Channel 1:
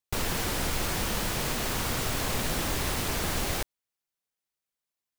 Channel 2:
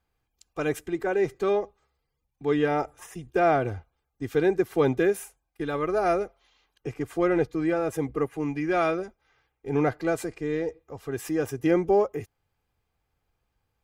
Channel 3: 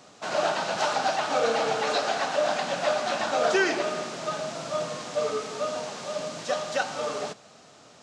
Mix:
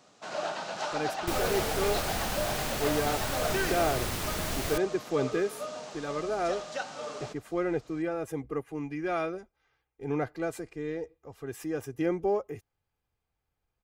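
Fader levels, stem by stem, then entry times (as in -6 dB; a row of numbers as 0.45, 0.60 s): -3.5, -6.5, -8.0 dB; 1.15, 0.35, 0.00 s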